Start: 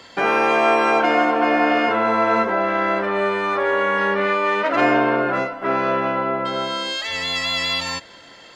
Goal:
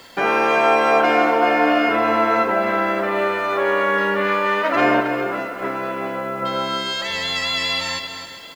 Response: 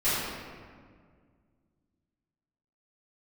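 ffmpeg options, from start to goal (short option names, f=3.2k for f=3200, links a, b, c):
-filter_complex "[0:a]asettb=1/sr,asplit=3[a][b][c];[a]atrim=end=5.004[d];[b]atrim=start=5:end=6.42,asetpts=PTS-STARTPTS,afade=t=in:d=0.004:c=qsin,afade=t=out:st=1.416:d=0.004:c=qsin,acompressor=threshold=-22dB:ratio=10[e];[c]atrim=start=6.416[f];[d][e]acrossfade=d=0.004:c1=hsin:c2=qsin[g];[g][f]acrossfade=d=0.004:c1=qsin:c2=hsin,asplit=2[h][i];[i]aecho=0:1:398|796|1194|1592|1990:0.188|0.0942|0.0471|0.0235|0.0118[j];[h][j]amix=inputs=2:normalize=0,acrusher=bits=9:dc=4:mix=0:aa=0.000001,asplit=2[k][l];[l]aecho=0:1:268:0.335[m];[k][m]amix=inputs=2:normalize=0"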